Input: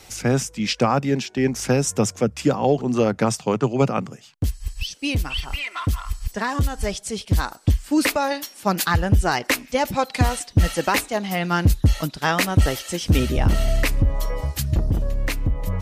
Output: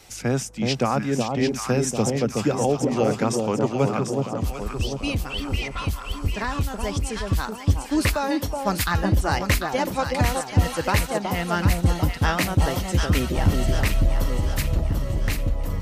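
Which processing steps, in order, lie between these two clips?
vibrato 9.8 Hz 16 cents; echo with dull and thin repeats by turns 0.372 s, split 1000 Hz, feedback 71%, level -3 dB; gain -3.5 dB

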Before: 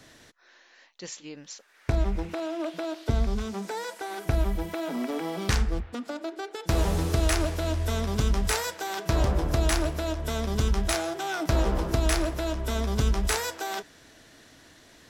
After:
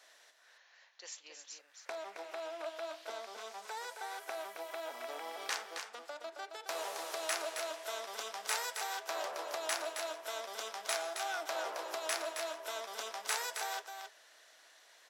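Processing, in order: HPF 570 Hz 24 dB/oct; echo 0.269 s -6.5 dB; gain -7 dB

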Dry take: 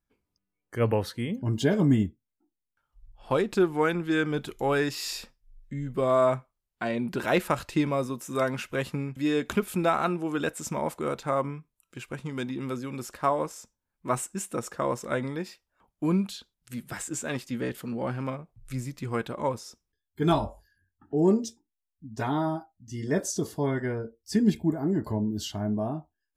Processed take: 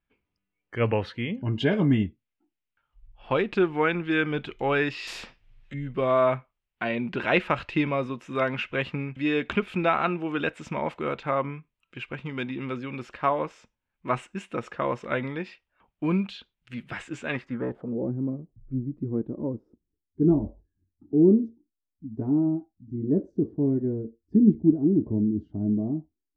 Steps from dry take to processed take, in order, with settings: low-pass sweep 2700 Hz -> 310 Hz, 17.28–18.11; 5.07–5.74 spectral compressor 2:1

